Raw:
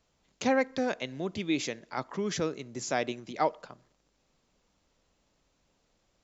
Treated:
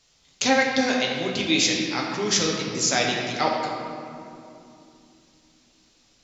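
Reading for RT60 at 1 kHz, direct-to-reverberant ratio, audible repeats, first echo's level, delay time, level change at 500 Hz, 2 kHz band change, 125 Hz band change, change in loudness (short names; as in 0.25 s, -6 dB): 2.5 s, -2.0 dB, none, none, none, +5.5 dB, +11.5 dB, +7.0 dB, +9.0 dB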